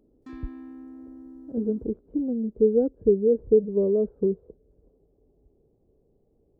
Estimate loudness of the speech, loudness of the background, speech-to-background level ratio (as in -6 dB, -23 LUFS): -24.5 LUFS, -44.0 LUFS, 19.5 dB